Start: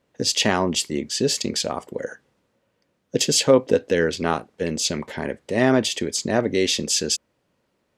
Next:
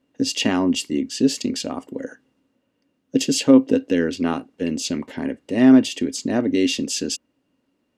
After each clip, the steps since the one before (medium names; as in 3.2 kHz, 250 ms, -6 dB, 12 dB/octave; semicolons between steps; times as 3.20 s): small resonant body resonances 270/2800 Hz, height 16 dB, ringing for 70 ms; trim -4.5 dB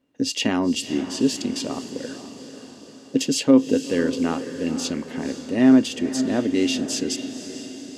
echo that smears into a reverb 499 ms, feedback 56%, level -11 dB; trim -2 dB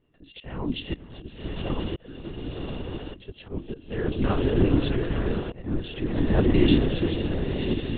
echo that smears into a reverb 1046 ms, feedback 41%, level -8 dB; slow attack 723 ms; LPC vocoder at 8 kHz whisper; trim +1.5 dB